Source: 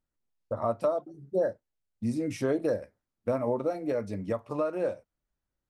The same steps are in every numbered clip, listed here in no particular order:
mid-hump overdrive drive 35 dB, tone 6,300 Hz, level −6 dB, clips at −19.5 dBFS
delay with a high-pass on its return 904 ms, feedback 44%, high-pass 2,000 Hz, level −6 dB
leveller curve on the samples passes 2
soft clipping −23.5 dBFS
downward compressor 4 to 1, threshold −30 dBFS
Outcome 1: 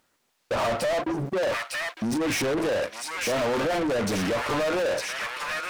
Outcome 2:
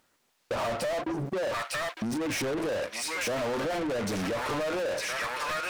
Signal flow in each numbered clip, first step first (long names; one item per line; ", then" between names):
leveller curve on the samples, then soft clipping, then downward compressor, then delay with a high-pass on its return, then mid-hump overdrive
leveller curve on the samples, then delay with a high-pass on its return, then soft clipping, then mid-hump overdrive, then downward compressor